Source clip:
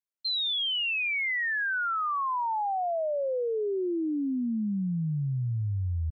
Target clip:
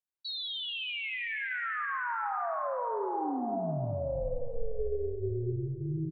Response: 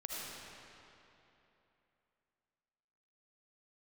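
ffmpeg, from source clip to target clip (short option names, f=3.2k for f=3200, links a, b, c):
-filter_complex "[0:a]bandreject=f=50:t=h:w=6,bandreject=f=100:t=h:w=6,bandreject=f=150:t=h:w=6,bandreject=f=200:t=h:w=6,aeval=exprs='val(0)*sin(2*PI*240*n/s)':c=same,aecho=1:1:7.4:0.51,asplit=2[a][b];[1:a]atrim=start_sample=2205,asetrate=52920,aresample=44100,lowpass=2k[c];[b][c]afir=irnorm=-1:irlink=0,volume=-1dB[d];[a][d]amix=inputs=2:normalize=0,volume=-5.5dB"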